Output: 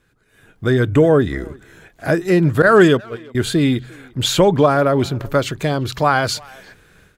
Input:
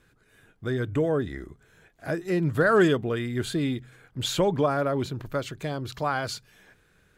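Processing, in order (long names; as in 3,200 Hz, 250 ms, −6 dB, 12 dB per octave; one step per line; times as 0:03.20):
0:02.62–0:03.35: noise gate −24 dBFS, range −25 dB
automatic gain control gain up to 13.5 dB
far-end echo of a speakerphone 350 ms, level −23 dB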